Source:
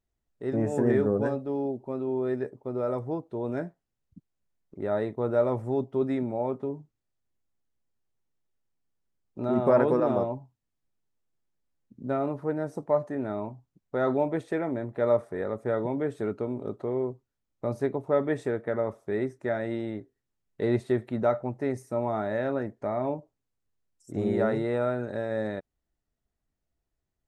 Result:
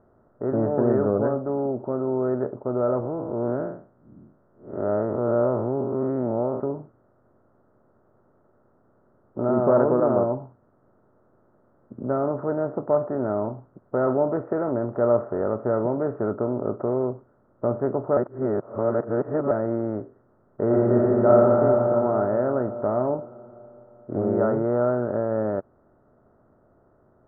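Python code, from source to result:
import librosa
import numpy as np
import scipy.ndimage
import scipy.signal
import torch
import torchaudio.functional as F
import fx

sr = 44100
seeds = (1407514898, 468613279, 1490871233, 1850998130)

y = fx.spec_blur(x, sr, span_ms=157.0, at=(3.01, 6.6))
y = fx.reverb_throw(y, sr, start_s=20.65, length_s=0.94, rt60_s=2.6, drr_db=-5.5)
y = fx.edit(y, sr, fx.reverse_span(start_s=18.17, length_s=1.34), tone=tone)
y = fx.bin_compress(y, sr, power=0.6)
y = scipy.signal.sosfilt(scipy.signal.ellip(4, 1.0, 80, 1400.0, 'lowpass', fs=sr, output='sos'), y)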